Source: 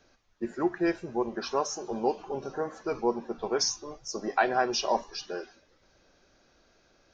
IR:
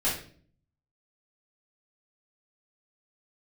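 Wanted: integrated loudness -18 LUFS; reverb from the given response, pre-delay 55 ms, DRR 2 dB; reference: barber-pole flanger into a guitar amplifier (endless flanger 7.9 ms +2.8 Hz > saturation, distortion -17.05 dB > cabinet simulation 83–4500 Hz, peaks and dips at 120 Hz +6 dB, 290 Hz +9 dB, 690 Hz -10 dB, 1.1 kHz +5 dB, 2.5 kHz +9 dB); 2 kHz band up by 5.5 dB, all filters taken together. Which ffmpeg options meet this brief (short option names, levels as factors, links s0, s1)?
-filter_complex "[0:a]equalizer=f=2000:t=o:g=4.5,asplit=2[s0][s1];[1:a]atrim=start_sample=2205,adelay=55[s2];[s1][s2]afir=irnorm=-1:irlink=0,volume=0.266[s3];[s0][s3]amix=inputs=2:normalize=0,asplit=2[s4][s5];[s5]adelay=7.9,afreqshift=2.8[s6];[s4][s6]amix=inputs=2:normalize=1,asoftclip=threshold=0.1,highpass=83,equalizer=f=120:t=q:w=4:g=6,equalizer=f=290:t=q:w=4:g=9,equalizer=f=690:t=q:w=4:g=-10,equalizer=f=1100:t=q:w=4:g=5,equalizer=f=2500:t=q:w=4:g=9,lowpass=f=4500:w=0.5412,lowpass=f=4500:w=1.3066,volume=4.73"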